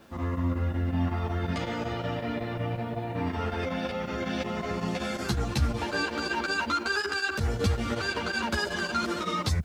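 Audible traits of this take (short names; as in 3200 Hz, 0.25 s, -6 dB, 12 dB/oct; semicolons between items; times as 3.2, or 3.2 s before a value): chopped level 5.4 Hz, depth 60%, duty 85%; a quantiser's noise floor 12-bit, dither triangular; a shimmering, thickened sound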